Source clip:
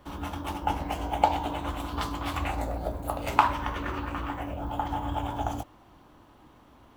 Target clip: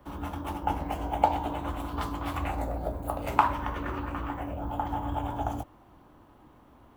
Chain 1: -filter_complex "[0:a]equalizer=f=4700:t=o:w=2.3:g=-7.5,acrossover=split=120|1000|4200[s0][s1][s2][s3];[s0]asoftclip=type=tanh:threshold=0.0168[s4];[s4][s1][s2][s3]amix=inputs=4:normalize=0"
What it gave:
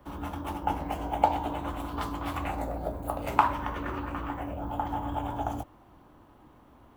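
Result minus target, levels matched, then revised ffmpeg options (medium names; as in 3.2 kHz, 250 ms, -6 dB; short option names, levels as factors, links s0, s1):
saturation: distortion +15 dB
-filter_complex "[0:a]equalizer=f=4700:t=o:w=2.3:g=-7.5,acrossover=split=120|1000|4200[s0][s1][s2][s3];[s0]asoftclip=type=tanh:threshold=0.0596[s4];[s4][s1][s2][s3]amix=inputs=4:normalize=0"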